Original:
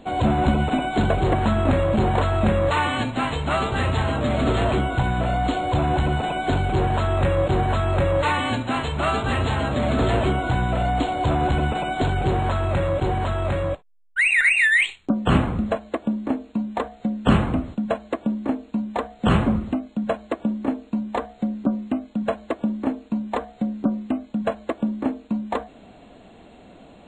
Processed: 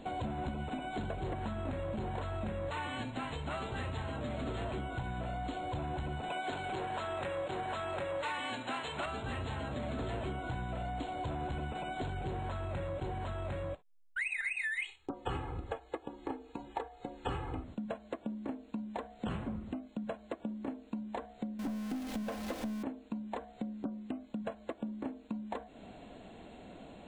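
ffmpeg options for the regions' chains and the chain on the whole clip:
-filter_complex "[0:a]asettb=1/sr,asplit=3[a][b][c];[a]atrim=end=6.304[d];[b]atrim=start=6.3:end=9.06,asetpts=PTS-STARTPTS,afade=t=in:d=0.004:c=qsin,afade=t=out:st=2.756:d=0.004:c=qsin,highpass=f=590:p=1,acontrast=89[e];[c]atrim=start=9.056[f];[d][e]acrossfade=d=0.004:c1=hsin:c2=qsin[g];[g][f]acrossfade=d=0.004:c1=qsin:c2=hsin,asettb=1/sr,asplit=3[h][i][j];[h]atrim=end=14.204[k];[i]atrim=start=14.2:end=17.64,asetpts=PTS-STARTPTS,afade=t=in:d=0.004:c=qsin,afade=t=out:st=3.436:d=0.004:c=qsin,equalizer=f=1k:t=o:w=0.8:g=5.5,aecho=1:1:2.4:0.96,atrim=end_sample=151704[l];[j]atrim=start=17.636[m];[k][l]acrossfade=d=0.004:c1=hsin:c2=qsin[n];[n][m]acrossfade=d=0.004:c1=qsin:c2=hsin,asettb=1/sr,asplit=3[o][p][q];[o]atrim=end=21.594[r];[p]atrim=start=21.59:end=22.83,asetpts=PTS-STARTPTS,afade=t=in:d=0.004:c=qsin,afade=t=out:st=1.236:d=0.004:c=qsin,aeval=exprs='val(0)+0.5*0.0531*sgn(val(0))':c=same,aecho=1:1:3.9:0.53,atrim=end_sample=54684,aeval=exprs='(tanh(6.31*val(0)+0.15)-tanh(0.15))/6.31':c=same[s];[q]atrim=start=22.826[t];[r][s]acrossfade=d=0.004:c1=hsin:c2=qsin[u];[u][t]acrossfade=d=0.004:c1=qsin:c2=hsin,bandreject=f=1.2k:w=17,acompressor=threshold=-34dB:ratio=4,volume=-4dB"

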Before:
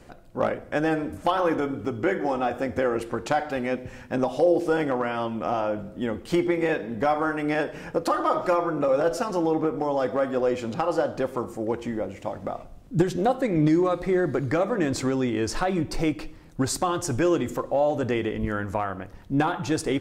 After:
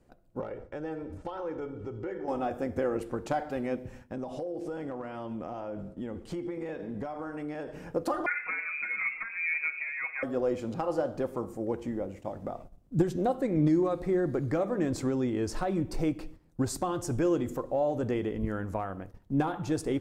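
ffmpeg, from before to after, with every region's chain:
-filter_complex "[0:a]asettb=1/sr,asplit=3[a][b][c];[a]atrim=end=0.404[d];[b]atrim=start=0.4:end=2.28,asetpts=PTS-STARTPTS,afade=t=in:d=0.004:c=qsin,afade=t=out:st=1.876:d=0.004:c=qsin,lowpass=5.9k,acompressor=threshold=-32dB:ratio=2.5:attack=3.2:release=140:knee=1:detection=peak,aecho=1:1:2.2:0.48,atrim=end_sample=82908[e];[c]atrim=start=2.276[f];[d][e]acrossfade=d=0.004:c1=hsin:c2=qsin[g];[g][f]acrossfade=d=0.004:c1=qsin:c2=hsin,asettb=1/sr,asplit=3[h][i][j];[h]atrim=end=4.114[k];[i]atrim=start=4.11:end=7.73,asetpts=PTS-STARTPTS,afade=t=in:d=0.004:c=qsin,afade=t=out:st=3.616:d=0.004:c=qsin,lowpass=10k,acompressor=threshold=-28dB:ratio=5:attack=3.2:release=140:knee=1:detection=peak[l];[j]atrim=start=7.726[m];[k][l]acrossfade=d=0.004:c1=hsin:c2=qsin[n];[n][m]acrossfade=d=0.004:c1=qsin:c2=hsin,asettb=1/sr,asplit=3[o][p][q];[o]atrim=end=8.264[r];[p]atrim=start=8.26:end=10.23,asetpts=PTS-STARTPTS,afade=t=in:d=0.004:c=qsin,afade=t=out:st=1.966:d=0.004:c=qsin,lowpass=f=2.3k:t=q:w=0.5098,lowpass=f=2.3k:t=q:w=0.6013,lowpass=f=2.3k:t=q:w=0.9,lowpass=f=2.3k:t=q:w=2.563,afreqshift=-2700,aecho=1:1:6.3:0.54,atrim=end_sample=86877[s];[q]atrim=start=10.226[t];[r][s]acrossfade=d=0.004:c1=hsin:c2=qsin[u];[u][t]acrossfade=d=0.004:c1=qsin:c2=hsin,aemphasis=mode=production:type=cd,agate=range=-10dB:threshold=-41dB:ratio=16:detection=peak,tiltshelf=f=1.2k:g=6,volume=-9dB"

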